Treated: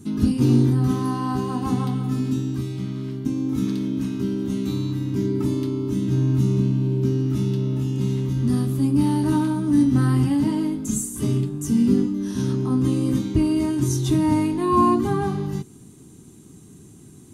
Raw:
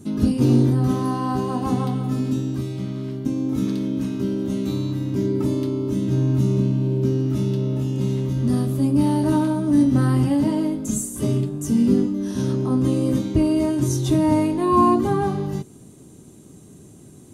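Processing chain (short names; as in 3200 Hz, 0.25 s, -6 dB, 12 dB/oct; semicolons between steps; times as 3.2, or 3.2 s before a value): bell 580 Hz -11.5 dB 0.57 oct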